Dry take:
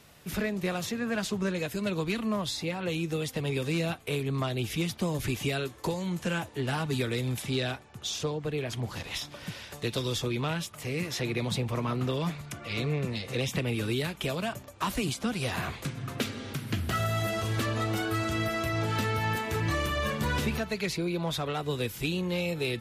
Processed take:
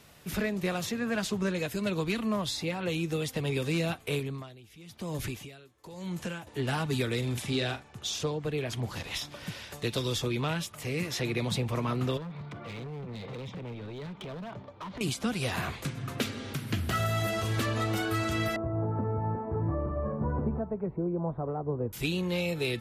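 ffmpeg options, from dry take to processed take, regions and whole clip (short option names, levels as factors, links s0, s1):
-filter_complex "[0:a]asettb=1/sr,asplit=3[s0][s1][s2];[s0]atrim=end=4.194[s3];[s1]atrim=start=4.19:end=6.47,asetpts=PTS-STARTPTS,afade=t=in:d=0.004:c=qsin,afade=t=out:st=2.276:d=0.004:c=qsin,acompressor=threshold=0.0282:ratio=2:attack=3.2:release=140:knee=1:detection=peak,aeval=exprs='val(0)*pow(10,-20*(0.5-0.5*cos(2*PI*1*n/s))/20)':c=same[s4];[s2]atrim=start=6.466[s5];[s3][s4]acrossfade=d=0.004:c1=hsin:c2=qsin[s6];[s6][s5]acrossfade=d=0.004:c1=qsin:c2=hsin,asettb=1/sr,asplit=3[s7][s8][s9];[s7]atrim=end=7.184[s10];[s8]atrim=start=7.18:end=7.99,asetpts=PTS-STARTPTS,afade=t=in:d=0.004:c=qsin,afade=t=out:st=0.806:d=0.004:c=qsin,lowpass=11000,asplit=2[s11][s12];[s12]adelay=42,volume=0.316[s13];[s11][s13]amix=inputs=2:normalize=0,atrim=end_sample=35721[s14];[s9]atrim=start=7.986[s15];[s10][s14]acrossfade=d=0.004:c1=hsin:c2=qsin[s16];[s16][s15]acrossfade=d=0.004:c1=qsin:c2=hsin,asettb=1/sr,asplit=3[s17][s18][s19];[s17]atrim=end=12.174[s20];[s18]atrim=start=12.17:end=15.01,asetpts=PTS-STARTPTS,afade=t=in:d=0.004:c=qsin,afade=t=out:st=2.836:d=0.004:c=qsin,highpass=100,equalizer=f=110:t=q:w=4:g=5,equalizer=f=180:t=q:w=4:g=7,equalizer=f=440:t=q:w=4:g=4,equalizer=f=930:t=q:w=4:g=5,equalizer=f=1700:t=q:w=4:g=-5,equalizer=f=2700:t=q:w=4:g=-8,lowpass=f=3600:w=0.5412,lowpass=f=3600:w=1.3066,acompressor=threshold=0.0224:ratio=10:attack=3.2:release=140:knee=1:detection=peak,asoftclip=type=hard:threshold=0.015[s21];[s19]atrim=start=15.006[s22];[s20][s21]acrossfade=d=0.004:c1=hsin:c2=qsin[s23];[s23][s22]acrossfade=d=0.004:c1=qsin:c2=hsin,asettb=1/sr,asplit=3[s24][s25][s26];[s24]atrim=end=18.564[s27];[s25]atrim=start=18.56:end=21.93,asetpts=PTS-STARTPTS,afade=t=in:d=0.004:c=qsin,afade=t=out:st=3.366:d=0.004:c=qsin,lowpass=f=1000:w=0.5412,lowpass=f=1000:w=1.3066,aemphasis=mode=reproduction:type=75kf[s28];[s26]atrim=start=21.926[s29];[s27][s28]acrossfade=d=0.004:c1=hsin:c2=qsin[s30];[s30][s29]acrossfade=d=0.004:c1=qsin:c2=hsin"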